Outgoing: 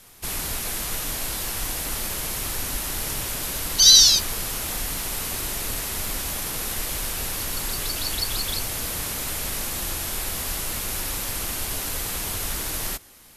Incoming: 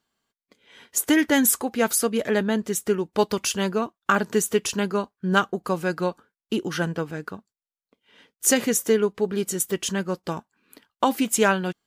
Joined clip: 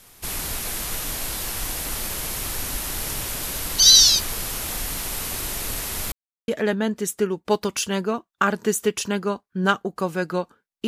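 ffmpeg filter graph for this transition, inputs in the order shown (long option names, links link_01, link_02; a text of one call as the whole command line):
ffmpeg -i cue0.wav -i cue1.wav -filter_complex "[0:a]apad=whole_dur=10.87,atrim=end=10.87,asplit=2[link_01][link_02];[link_01]atrim=end=6.12,asetpts=PTS-STARTPTS,afade=type=out:start_time=6.116:duration=0.004:curve=hsin[link_03];[link_02]atrim=start=6.12:end=6.48,asetpts=PTS-STARTPTS,volume=0[link_04];[1:a]atrim=start=2.16:end=6.55,asetpts=PTS-STARTPTS,afade=type=in:duration=0.004:curve=hsin[link_05];[link_03][link_04][link_05]concat=n=3:v=0:a=1" out.wav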